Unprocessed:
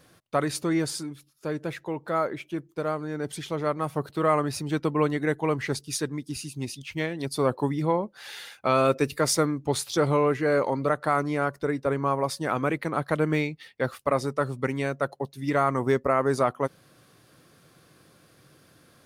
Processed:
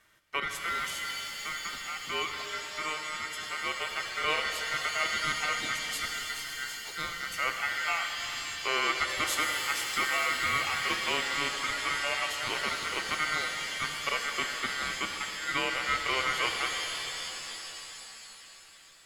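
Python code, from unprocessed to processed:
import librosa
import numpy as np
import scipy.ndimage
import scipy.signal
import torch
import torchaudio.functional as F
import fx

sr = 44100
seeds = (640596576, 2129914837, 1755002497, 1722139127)

y = x * np.sin(2.0 * np.pi * 1700.0 * np.arange(len(x)) / sr)
y = fx.rev_shimmer(y, sr, seeds[0], rt60_s=3.5, semitones=7, shimmer_db=-2, drr_db=4.5)
y = F.gain(torch.from_numpy(y), -5.0).numpy()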